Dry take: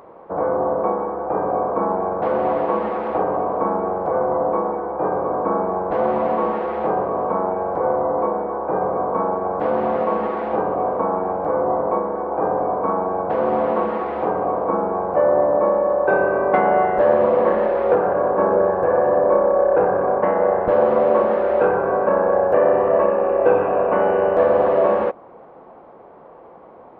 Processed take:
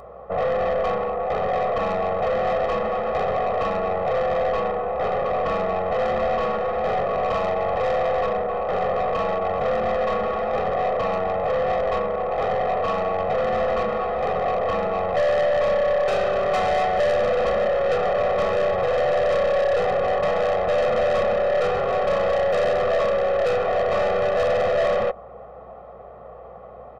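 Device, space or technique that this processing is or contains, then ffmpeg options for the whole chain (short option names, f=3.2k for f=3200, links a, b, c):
valve amplifier with mains hum: -filter_complex "[0:a]asettb=1/sr,asplit=3[a][b][c];[a]atrim=end=7.234[d];[b]atrim=start=7.23:end=8.21,asetpts=PTS-STARTPTS,afade=t=in:d=0.004:c=qsin,afade=t=out:st=0.976:d=0.004:c=qsin,highshelf=f=1.7k:t=q:w=1.5:g=-8[e];[c]atrim=start=8.206[f];[d][e]acrossfade=d=0.004:c1=hsin:c2=qsin[g];[g][f]acrossfade=d=0.004:c1=qsin:c2=hsin,aeval=exprs='(tanh(12.6*val(0)+0.15)-tanh(0.15))/12.6':c=same,aeval=exprs='val(0)+0.00141*(sin(2*PI*60*n/s)+sin(2*PI*2*60*n/s)/2+sin(2*PI*3*60*n/s)/3+sin(2*PI*4*60*n/s)/4+sin(2*PI*5*60*n/s)/5)':c=same,aecho=1:1:1.6:0.85"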